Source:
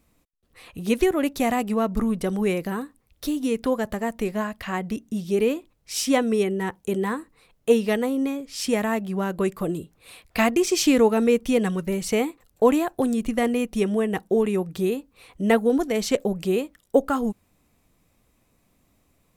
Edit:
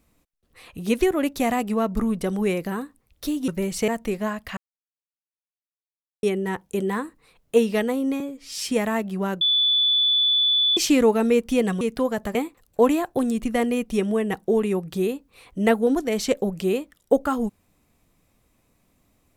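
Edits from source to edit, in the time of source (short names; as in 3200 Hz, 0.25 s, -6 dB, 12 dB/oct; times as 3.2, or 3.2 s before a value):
3.48–4.02 swap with 11.78–12.18
4.71–6.37 mute
8.34–8.68 stretch 1.5×
9.38–10.74 bleep 3470 Hz -16.5 dBFS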